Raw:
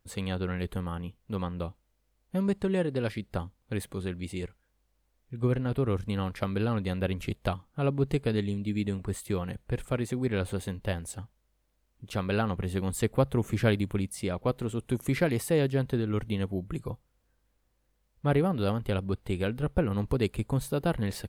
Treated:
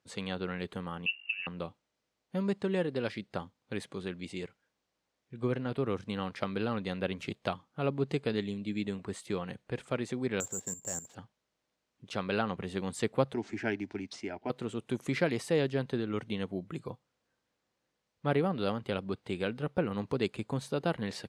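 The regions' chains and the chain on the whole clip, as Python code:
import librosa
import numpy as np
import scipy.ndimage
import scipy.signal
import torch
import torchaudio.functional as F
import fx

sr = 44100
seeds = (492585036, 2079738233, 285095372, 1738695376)

y = fx.chain(x, sr, fx.low_shelf(hz=230.0, db=10.0),
    fx.over_compress(threshold_db=-32.0, ratio=-0.5),
    fx.freq_invert(carrier_hz=2800), at=(1.06, 1.47))
y = fx.chain(y, sr, fx.lowpass(hz=1700.0, slope=12),
    fx.level_steps(step_db=12),
    fx.resample_bad(factor=6, down='none', up='zero_stuff'), at=(10.4, 11.15))
y = fx.chain(y, sr, fx.fixed_phaser(hz=770.0, stages=8),
    fx.resample_linear(factor=3), at=(13.34, 14.5))
y = scipy.signal.sosfilt(scipy.signal.cheby1(2, 1.0, [150.0, 5800.0], 'bandpass', fs=sr, output='sos'), y)
y = fx.low_shelf(y, sr, hz=250.0, db=-7.0)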